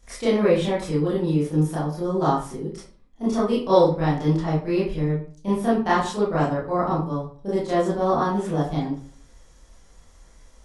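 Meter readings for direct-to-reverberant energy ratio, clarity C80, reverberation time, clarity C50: -10.0 dB, 8.0 dB, 0.45 s, 2.5 dB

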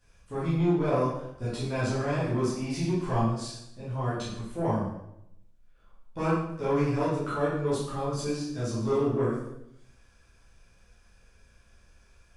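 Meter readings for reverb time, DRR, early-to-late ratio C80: 0.80 s, -10.5 dB, 5.5 dB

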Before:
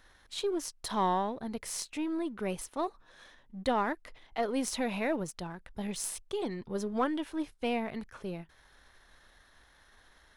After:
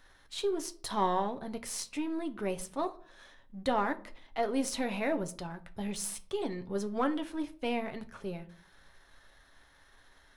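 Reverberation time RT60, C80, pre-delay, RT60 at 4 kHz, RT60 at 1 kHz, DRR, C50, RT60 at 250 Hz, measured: 0.50 s, 22.0 dB, 7 ms, 0.30 s, 0.45 s, 7.0 dB, 18.0 dB, 0.75 s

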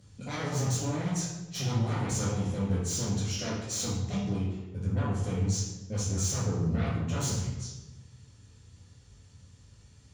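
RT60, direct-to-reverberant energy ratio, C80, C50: 1.1 s, -8.5 dB, 4.0 dB, 0.5 dB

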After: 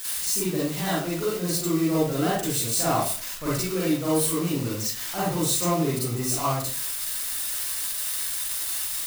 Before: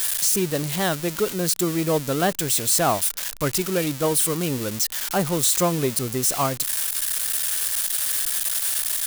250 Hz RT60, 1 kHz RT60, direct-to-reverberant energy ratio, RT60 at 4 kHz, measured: 0.50 s, 0.40 s, -8.5 dB, 0.35 s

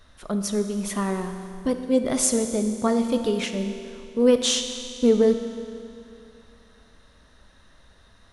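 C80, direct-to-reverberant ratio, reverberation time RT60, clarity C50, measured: 8.5 dB, 6.5 dB, 2.6 s, 7.5 dB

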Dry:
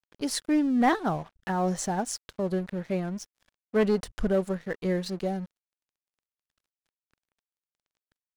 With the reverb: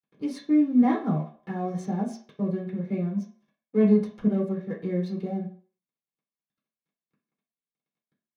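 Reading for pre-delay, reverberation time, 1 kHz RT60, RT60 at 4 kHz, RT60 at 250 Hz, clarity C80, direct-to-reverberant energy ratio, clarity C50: 3 ms, 0.50 s, 0.55 s, 0.45 s, 0.40 s, 13.5 dB, -4.5 dB, 8.5 dB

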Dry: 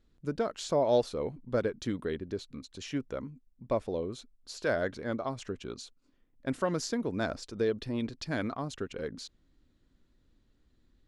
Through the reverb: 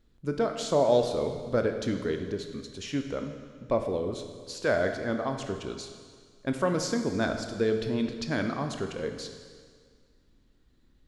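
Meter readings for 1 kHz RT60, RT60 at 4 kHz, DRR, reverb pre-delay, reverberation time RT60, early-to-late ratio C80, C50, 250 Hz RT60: 1.8 s, 1.7 s, 5.5 dB, 19 ms, 1.8 s, 8.0 dB, 7.0 dB, 1.8 s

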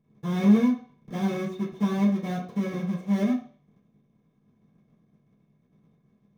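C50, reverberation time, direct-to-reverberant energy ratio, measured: 7.5 dB, 0.45 s, -9.5 dB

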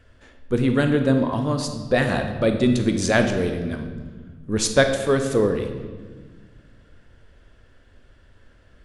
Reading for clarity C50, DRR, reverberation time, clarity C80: 7.0 dB, 5.5 dB, 1.5 s, 9.0 dB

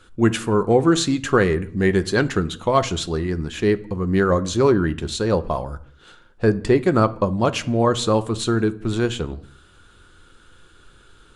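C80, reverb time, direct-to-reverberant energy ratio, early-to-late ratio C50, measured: 22.5 dB, 0.65 s, 10.5 dB, 19.0 dB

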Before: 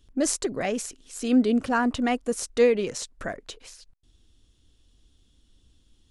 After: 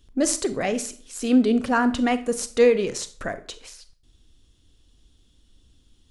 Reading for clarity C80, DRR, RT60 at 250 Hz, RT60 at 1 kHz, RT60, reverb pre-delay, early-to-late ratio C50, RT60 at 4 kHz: 19.5 dB, 11.5 dB, 0.45 s, 0.40 s, 0.45 s, 32 ms, 15.0 dB, 0.35 s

